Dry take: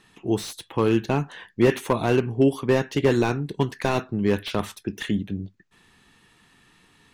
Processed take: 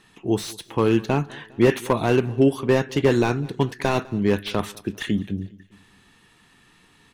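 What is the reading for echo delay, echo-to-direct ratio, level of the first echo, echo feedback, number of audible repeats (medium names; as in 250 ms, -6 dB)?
202 ms, -21.5 dB, -23.0 dB, 52%, 3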